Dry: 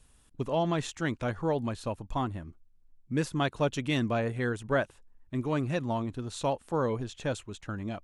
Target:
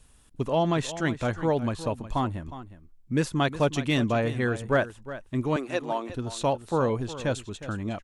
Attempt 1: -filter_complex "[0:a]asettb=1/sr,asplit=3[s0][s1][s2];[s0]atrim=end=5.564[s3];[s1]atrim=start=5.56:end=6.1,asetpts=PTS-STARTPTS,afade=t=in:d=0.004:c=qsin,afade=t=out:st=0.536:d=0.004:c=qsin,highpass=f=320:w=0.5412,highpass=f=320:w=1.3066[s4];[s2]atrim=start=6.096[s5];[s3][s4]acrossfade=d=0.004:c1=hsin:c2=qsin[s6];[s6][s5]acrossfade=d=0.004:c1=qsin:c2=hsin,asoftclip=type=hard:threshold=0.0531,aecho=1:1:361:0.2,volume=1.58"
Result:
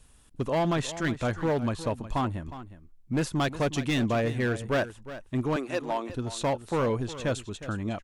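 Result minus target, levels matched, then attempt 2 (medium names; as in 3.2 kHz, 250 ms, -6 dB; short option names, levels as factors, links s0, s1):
hard clipper: distortion +28 dB
-filter_complex "[0:a]asettb=1/sr,asplit=3[s0][s1][s2];[s0]atrim=end=5.564[s3];[s1]atrim=start=5.56:end=6.1,asetpts=PTS-STARTPTS,afade=t=in:d=0.004:c=qsin,afade=t=out:st=0.536:d=0.004:c=qsin,highpass=f=320:w=0.5412,highpass=f=320:w=1.3066[s4];[s2]atrim=start=6.096[s5];[s3][s4]acrossfade=d=0.004:c1=hsin:c2=qsin[s6];[s6][s5]acrossfade=d=0.004:c1=qsin:c2=hsin,asoftclip=type=hard:threshold=0.126,aecho=1:1:361:0.2,volume=1.58"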